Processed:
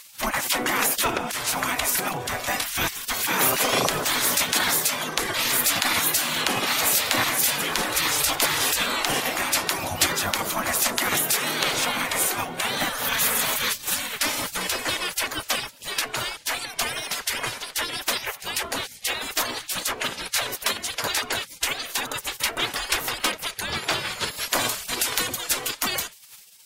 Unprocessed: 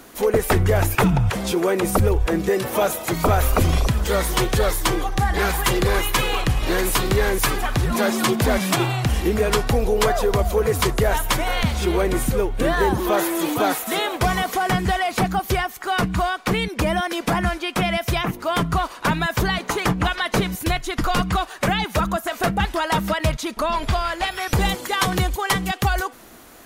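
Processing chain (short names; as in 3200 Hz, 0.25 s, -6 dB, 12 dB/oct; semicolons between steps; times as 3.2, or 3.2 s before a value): spectral gate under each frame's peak -20 dB weak; gain +7.5 dB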